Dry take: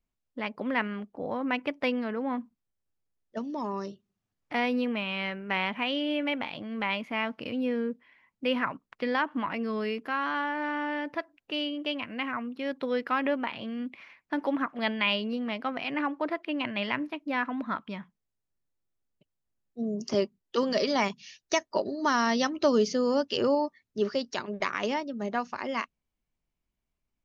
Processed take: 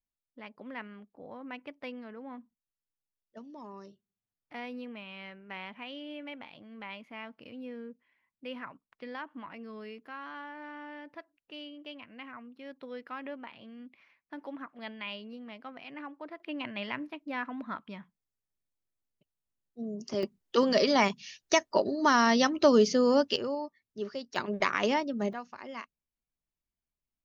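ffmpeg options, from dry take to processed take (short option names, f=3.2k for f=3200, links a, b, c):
-af "asetnsamples=n=441:p=0,asendcmd='16.4 volume volume -6dB;20.23 volume volume 2dB;23.36 volume volume -8.5dB;24.36 volume volume 2dB;25.33 volume volume -10dB',volume=-13dB"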